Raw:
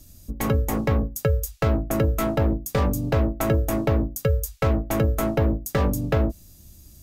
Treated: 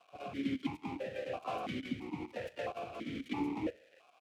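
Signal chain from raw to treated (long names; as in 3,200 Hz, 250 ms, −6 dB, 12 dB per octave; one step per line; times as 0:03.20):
gliding playback speed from 197% → 137%
reversed playback
downward compressor 4 to 1, threshold −34 dBFS, peak gain reduction 14.5 dB
reversed playback
feedback echo with a low-pass in the loop 155 ms, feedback 61%, low-pass 1,700 Hz, level −20 dB
bit-depth reduction 6 bits, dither none
on a send at −16 dB: convolution reverb RT60 0.70 s, pre-delay 3 ms
on the sum: rotating-speaker cabinet horn 1.1 Hz
surface crackle 380 per second −43 dBFS
pitch-shifted copies added −7 semitones −3 dB, +5 semitones −5 dB
formant filter that steps through the vowels 3 Hz
level +7.5 dB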